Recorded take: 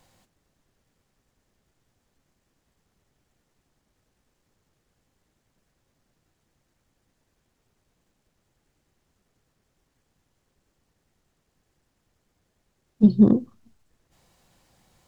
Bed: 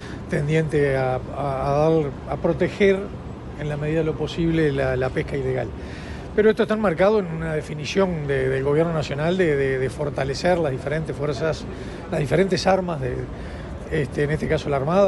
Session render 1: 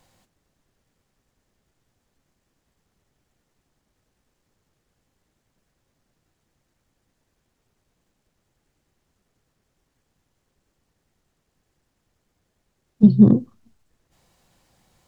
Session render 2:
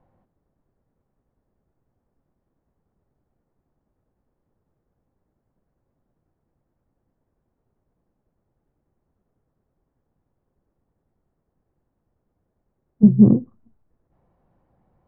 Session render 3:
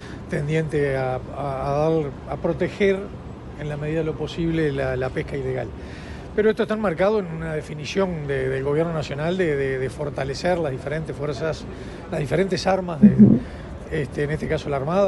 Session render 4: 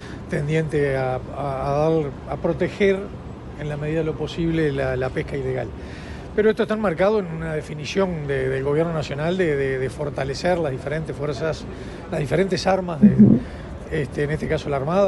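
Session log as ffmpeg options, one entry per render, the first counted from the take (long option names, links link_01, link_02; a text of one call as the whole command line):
ffmpeg -i in.wav -filter_complex "[0:a]asettb=1/sr,asplit=3[link_01][link_02][link_03];[link_01]atrim=end=13.034[link_04];[link_02]atrim=start=13.03:end=13.43,asetpts=PTS-STARTPTS,afade=type=in:duration=0.004:curve=qsin,afade=type=out:start_time=0.396:duration=0.004:curve=qsin,equalizer=frequency=130:width=1.7:gain=12[link_05];[link_03]atrim=start=13.426[link_06];[link_04][link_05]acrossfade=duration=0.004:curve1=hsin:curve2=qsin[link_07];[link_07][link_06]acrossfade=duration=0.004:curve1=qsin:curve2=hsin" out.wav
ffmpeg -i in.wav -af "lowpass=1000,aemphasis=mode=reproduction:type=75kf" out.wav
ffmpeg -i in.wav -i bed.wav -filter_complex "[1:a]volume=-2dB[link_01];[0:a][link_01]amix=inputs=2:normalize=0" out.wav
ffmpeg -i in.wav -af "volume=1dB,alimiter=limit=-3dB:level=0:latency=1" out.wav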